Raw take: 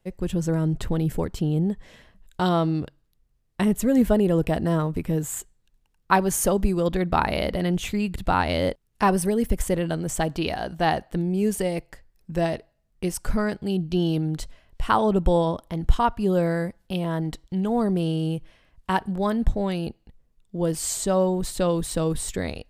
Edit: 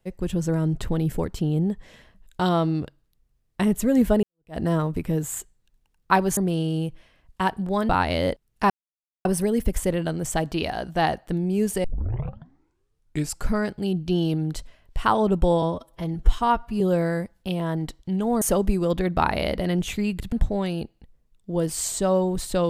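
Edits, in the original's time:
4.23–4.58 fade in exponential
6.37–8.28 swap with 17.86–19.38
9.09 insert silence 0.55 s
11.68 tape start 1.63 s
15.46–16.25 stretch 1.5×

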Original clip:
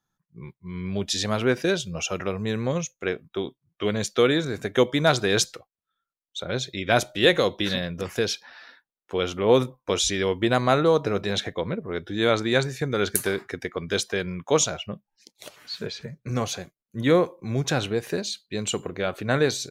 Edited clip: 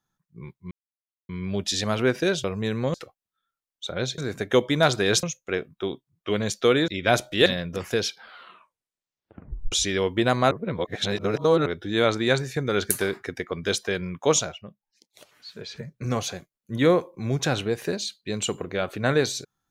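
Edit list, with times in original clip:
0.71 insert silence 0.58 s
1.86–2.27 cut
2.77–4.42 swap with 5.47–6.71
7.29–7.71 cut
8.32 tape stop 1.65 s
10.76–11.91 reverse
14.67–16 dip -8.5 dB, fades 0.16 s

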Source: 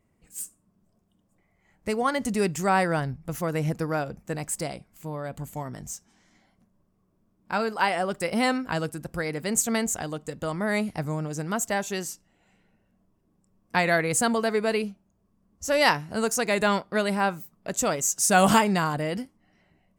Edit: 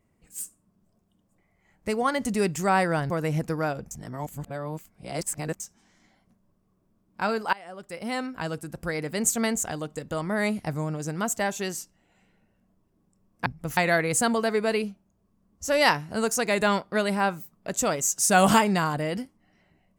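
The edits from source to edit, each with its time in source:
3.1–3.41 move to 13.77
4.22–5.91 reverse
7.84–9.27 fade in, from -23.5 dB

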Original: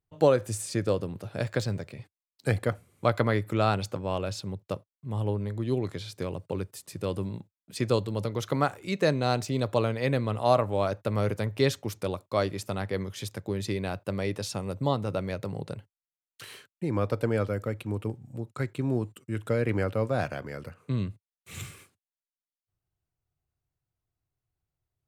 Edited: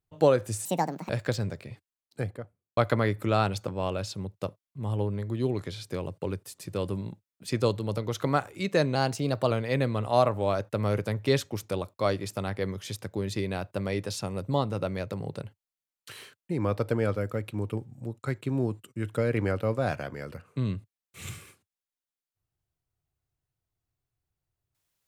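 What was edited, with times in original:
0.65–1.37 speed 163%
2–3.05 studio fade out
9.23–9.83 speed 108%

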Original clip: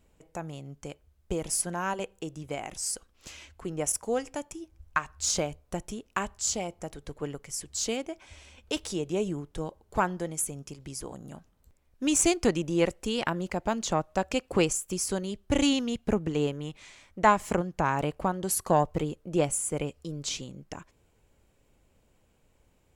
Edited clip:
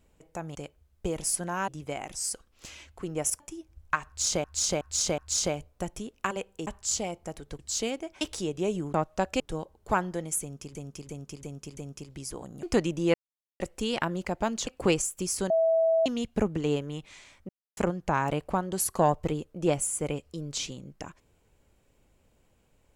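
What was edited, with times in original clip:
0.55–0.81 cut
1.94–2.3 move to 6.23
4.02–4.43 cut
5.1–5.47 loop, 4 plays
7.15–7.65 cut
8.27–8.73 cut
10.47–10.81 loop, 5 plays
11.33–12.34 cut
12.85 insert silence 0.46 s
13.92–14.38 move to 9.46
15.21–15.77 bleep 653 Hz -20 dBFS
17.2–17.48 mute

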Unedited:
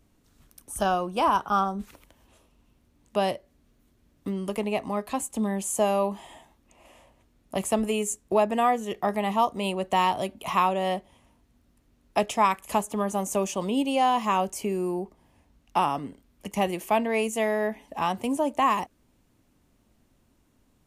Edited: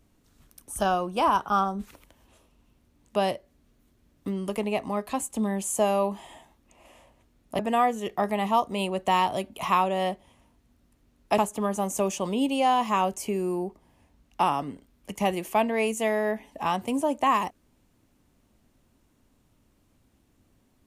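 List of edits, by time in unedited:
7.59–8.44 cut
12.23–12.74 cut

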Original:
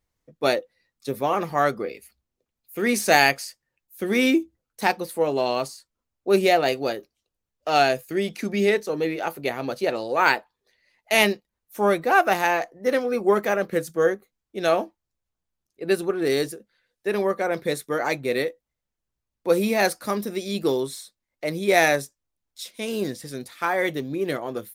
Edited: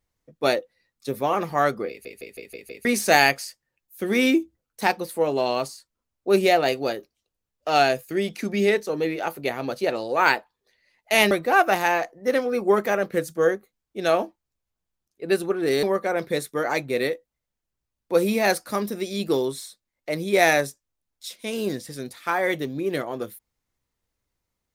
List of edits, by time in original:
1.89 stutter in place 0.16 s, 6 plays
11.31–11.9 cut
16.42–17.18 cut

